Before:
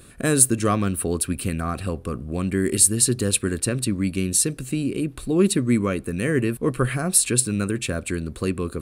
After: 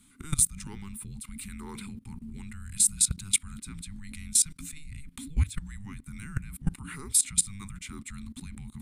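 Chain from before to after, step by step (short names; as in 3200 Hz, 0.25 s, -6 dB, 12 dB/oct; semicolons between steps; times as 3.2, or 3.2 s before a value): fixed phaser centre 400 Hz, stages 4; frequency shift -300 Hz; level quantiser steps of 20 dB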